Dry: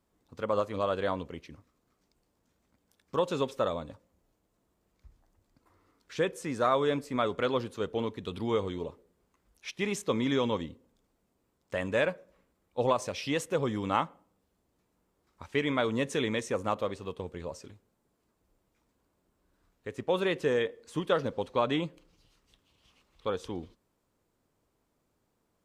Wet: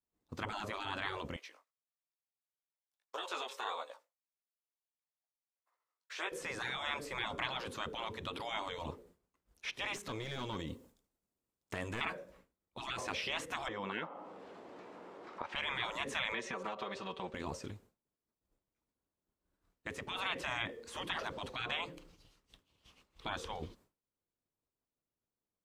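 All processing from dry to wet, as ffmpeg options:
-filter_complex "[0:a]asettb=1/sr,asplit=3[s0][s1][s2];[s0]atrim=end=1.364[s3];[s1]atrim=start=1.36:end=6.32,asetpts=PTS-STARTPTS,afade=t=in:d=0.004:c=qsin,afade=t=out:st=4.956:d=0.004:c=qsin,highpass=f=600:w=0.5412,highpass=f=600:w=1.3066,flanger=delay=15.5:depth=6.3:speed=1.6[s4];[s2]atrim=start=6.316[s5];[s3][s4]acrossfade=d=0.004:c1=hsin:c2=qsin[s6];[s6][s5]acrossfade=d=0.004:c1=qsin:c2=hsin,asettb=1/sr,asplit=3[s7][s8][s9];[s7]atrim=end=9.964[s10];[s8]atrim=start=9.96:end=12.01,asetpts=PTS-STARTPTS,afade=t=in:d=0.004:c=qsin,afade=t=out:st=2.046:d=0.004:c=qsin,highshelf=f=4900:g=8.5,aeval=exprs='clip(val(0),-1,0.0335)':c=same,acompressor=threshold=0.0126:ratio=6:attack=3.2:release=140:knee=1:detection=peak[s11];[s9]atrim=start=12.006[s12];[s10][s11]acrossfade=d=0.004:c1=hsin:c2=qsin[s13];[s13][s12]acrossfade=d=0.004:c1=qsin:c2=hsin,asettb=1/sr,asplit=3[s14][s15][s16];[s14]atrim=end=13.684[s17];[s15]atrim=start=13.68:end=15.56,asetpts=PTS-STARTPTS,afade=t=in:d=0.004:c=qsin,afade=t=out:st=1.876:d=0.004:c=qsin,highpass=420,lowpass=2200,equalizer=f=1600:t=o:w=1.9:g=-3.5,acompressor=mode=upward:threshold=0.0158:ratio=2.5:attack=3.2:release=140:knee=2.83:detection=peak[s18];[s16]atrim=start=15.556[s19];[s17][s18]acrossfade=d=0.004:c1=hsin:c2=qsin[s20];[s20][s19]acrossfade=d=0.004:c1=qsin:c2=hsin,asettb=1/sr,asplit=3[s21][s22][s23];[s21]atrim=end=16.324[s24];[s22]atrim=start=16.32:end=17.34,asetpts=PTS-STARTPTS,afade=t=in:d=0.004:c=qsin,afade=t=out:st=1.016:d=0.004:c=qsin,acrossover=split=420 5400:gain=0.224 1 0.112[s25][s26][s27];[s25][s26][s27]amix=inputs=3:normalize=0,aecho=1:1:5.2:0.99,atrim=end_sample=44982,acompressor=threshold=0.0126:ratio=4:attack=3.2:release=140:knee=1:detection=peak[s28];[s23]atrim=start=17.336[s29];[s24][s28]acrossfade=d=0.004:c1=hsin:c2=qsin[s30];[s30][s29]acrossfade=d=0.004:c1=qsin:c2=hsin,agate=range=0.0224:threshold=0.001:ratio=3:detection=peak,acrossover=split=2900[s31][s32];[s32]acompressor=threshold=0.00224:ratio=4:attack=1:release=60[s33];[s31][s33]amix=inputs=2:normalize=0,afftfilt=real='re*lt(hypot(re,im),0.0447)':imag='im*lt(hypot(re,im),0.0447)':win_size=1024:overlap=0.75,volume=1.88"

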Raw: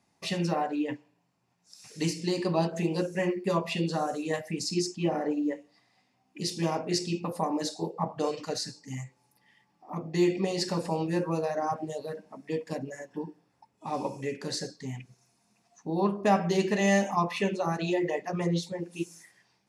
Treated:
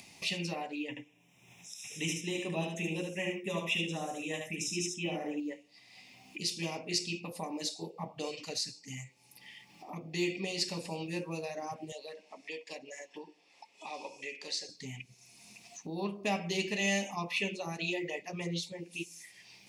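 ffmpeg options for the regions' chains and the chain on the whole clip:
-filter_complex "[0:a]asettb=1/sr,asplit=3[s0][s1][s2];[s0]atrim=end=0.894[s3];[s1]atrim=start=0.89:end=5.4,asetpts=PTS-STARTPTS,afade=t=in:d=0.004:c=qsin,afade=t=out:st=4.506:d=0.004:c=qsin,asuperstop=centerf=4500:order=8:qfactor=3.3,aecho=1:1:75:0.596,atrim=end_sample=198891[s4];[s2]atrim=start=5.396[s5];[s3][s4]acrossfade=d=0.004:c1=hsin:c2=qsin[s6];[s6][s5]acrossfade=d=0.004:c1=qsin:c2=hsin,asettb=1/sr,asplit=3[s7][s8][s9];[s7]atrim=end=11.924[s10];[s8]atrim=start=11.92:end=14.69,asetpts=PTS-STARTPTS,afade=t=in:d=0.004:c=qsin,afade=t=out:st=2.766:d=0.004:c=qsin,highpass=500,lowpass=6800,bandreject=f=1500:w=8.5[s11];[s9]atrim=start=14.686[s12];[s10][s11]acrossfade=d=0.004:c1=hsin:c2=qsin[s13];[s13][s12]acrossfade=d=0.004:c1=qsin:c2=hsin,highshelf=f=1900:t=q:w=3:g=7.5,acompressor=mode=upward:threshold=0.0355:ratio=2.5,volume=0.355"

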